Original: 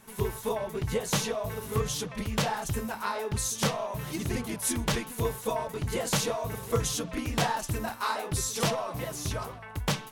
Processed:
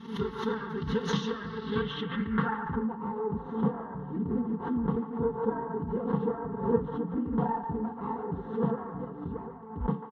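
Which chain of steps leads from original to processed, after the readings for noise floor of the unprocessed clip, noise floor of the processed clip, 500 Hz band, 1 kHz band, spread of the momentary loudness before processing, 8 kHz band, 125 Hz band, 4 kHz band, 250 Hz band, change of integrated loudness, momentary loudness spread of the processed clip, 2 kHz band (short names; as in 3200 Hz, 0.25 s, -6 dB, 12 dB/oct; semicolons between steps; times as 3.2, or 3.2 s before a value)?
-44 dBFS, -42 dBFS, -0.5 dB, -1.5 dB, 6 LU, under -25 dB, -2.5 dB, -10.0 dB, +5.0 dB, -1.5 dB, 6 LU, -5.5 dB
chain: minimum comb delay 0.31 ms; high shelf 6900 Hz -7.5 dB; notch 600 Hz, Q 12; comb 4.4 ms, depth 75%; low-pass sweep 9800 Hz -> 730 Hz, 1.04–2.95; HPF 130 Hz 12 dB/oct; air absorption 280 m; fixed phaser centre 2400 Hz, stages 6; band-limited delay 0.145 s, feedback 34%, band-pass 1200 Hz, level -7.5 dB; backwards sustainer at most 97 dB/s; gain +2.5 dB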